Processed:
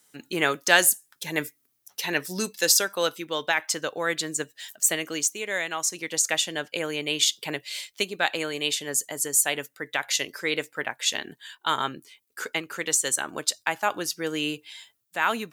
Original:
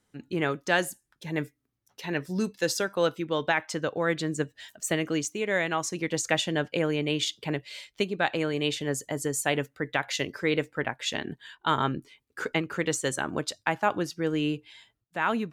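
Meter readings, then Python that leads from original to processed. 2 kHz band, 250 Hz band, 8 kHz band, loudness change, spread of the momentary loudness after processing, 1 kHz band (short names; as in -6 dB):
+3.5 dB, -4.5 dB, +11.0 dB, +3.5 dB, 12 LU, +0.5 dB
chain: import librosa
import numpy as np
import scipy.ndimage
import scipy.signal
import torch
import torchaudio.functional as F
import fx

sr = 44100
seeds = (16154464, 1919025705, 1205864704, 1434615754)

y = fx.riaa(x, sr, side='recording')
y = fx.rider(y, sr, range_db=10, speed_s=2.0)
y = y * 10.0 ** (-1.0 / 20.0)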